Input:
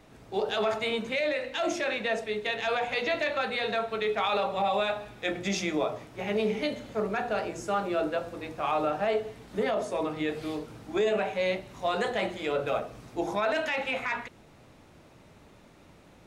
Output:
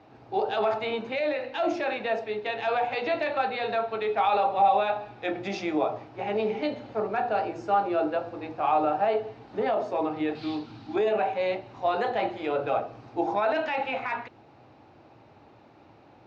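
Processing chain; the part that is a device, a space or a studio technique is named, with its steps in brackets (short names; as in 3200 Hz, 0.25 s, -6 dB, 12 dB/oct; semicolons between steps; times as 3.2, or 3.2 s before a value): guitar cabinet (speaker cabinet 100–4500 Hz, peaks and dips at 110 Hz +5 dB, 180 Hz -8 dB, 320 Hz +4 dB, 800 Hz +9 dB, 2000 Hz -4 dB, 3400 Hz -6 dB); 10.35–10.96 graphic EQ 250/500/4000 Hz +6/-10/+11 dB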